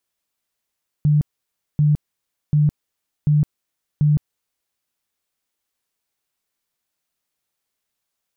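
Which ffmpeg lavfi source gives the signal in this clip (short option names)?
-f lavfi -i "aevalsrc='0.251*sin(2*PI*149*mod(t,0.74))*lt(mod(t,0.74),24/149)':d=3.7:s=44100"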